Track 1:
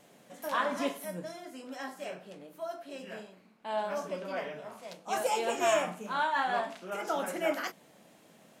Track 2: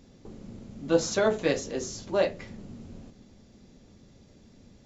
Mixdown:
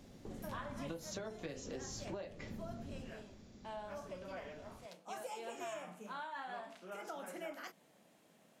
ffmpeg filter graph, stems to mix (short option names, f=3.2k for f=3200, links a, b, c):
-filter_complex "[0:a]volume=-8.5dB[a];[1:a]acompressor=threshold=-31dB:ratio=6,volume=-3dB[b];[a][b]amix=inputs=2:normalize=0,acrossover=split=140[c][d];[d]acompressor=threshold=-43dB:ratio=4[e];[c][e]amix=inputs=2:normalize=0"